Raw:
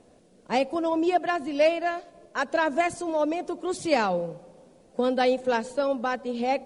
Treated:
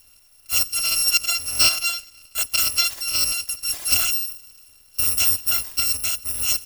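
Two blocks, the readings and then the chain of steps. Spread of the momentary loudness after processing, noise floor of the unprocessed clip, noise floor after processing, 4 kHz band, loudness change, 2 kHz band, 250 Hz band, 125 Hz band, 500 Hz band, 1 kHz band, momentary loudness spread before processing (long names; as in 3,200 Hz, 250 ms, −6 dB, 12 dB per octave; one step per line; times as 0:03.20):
8 LU, −58 dBFS, −54 dBFS, +17.0 dB, +7.0 dB, +3.5 dB, −20.0 dB, +3.5 dB, −21.5 dB, −11.0 dB, 8 LU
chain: samples in bit-reversed order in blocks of 256 samples
log-companded quantiser 6 bits
level +3.5 dB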